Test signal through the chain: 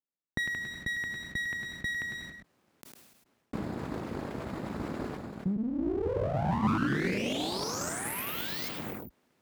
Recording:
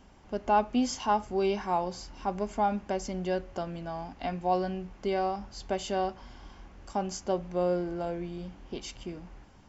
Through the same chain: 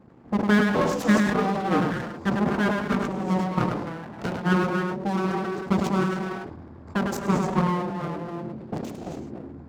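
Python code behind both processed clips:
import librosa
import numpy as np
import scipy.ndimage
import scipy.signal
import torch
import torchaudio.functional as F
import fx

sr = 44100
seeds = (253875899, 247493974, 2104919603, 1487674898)

y = fx.wiener(x, sr, points=15)
y = fx.rev_gated(y, sr, seeds[0], gate_ms=310, shape='rising', drr_db=3.0)
y = fx.dynamic_eq(y, sr, hz=130.0, q=1.5, threshold_db=-48.0, ratio=4.0, max_db=-6)
y = fx.transient(y, sr, attack_db=6, sustain_db=-6)
y = y + 10.0 ** (-7.5 / 20.0) * np.pad(y, (int(103 * sr / 1000.0), 0))[:len(y)]
y = np.abs(y)
y = scipy.signal.sosfilt(scipy.signal.butter(2, 66.0, 'highpass', fs=sr, output='sos'), y)
y = fx.peak_eq(y, sr, hz=230.0, db=11.0, octaves=2.1)
y = fx.sustainer(y, sr, db_per_s=44.0)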